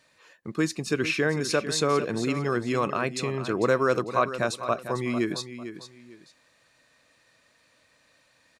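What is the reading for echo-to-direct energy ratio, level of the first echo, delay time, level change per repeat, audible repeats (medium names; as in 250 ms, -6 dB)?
-11.0 dB, -11.5 dB, 449 ms, -11.5 dB, 2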